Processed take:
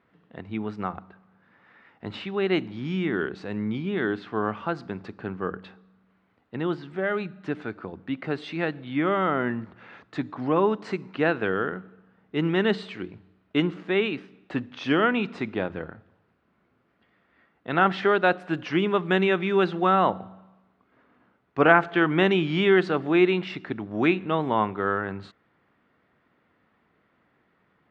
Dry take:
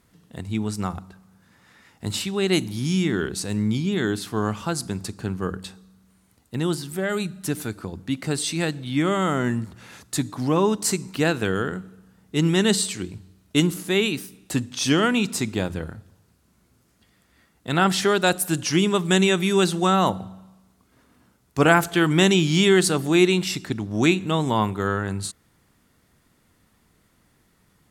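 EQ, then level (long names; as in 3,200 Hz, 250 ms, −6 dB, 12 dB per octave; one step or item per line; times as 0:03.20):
high-pass filter 500 Hz 6 dB per octave
Bessel low-pass filter 1,800 Hz, order 4
parametric band 940 Hz −2.5 dB 0.36 octaves
+3.0 dB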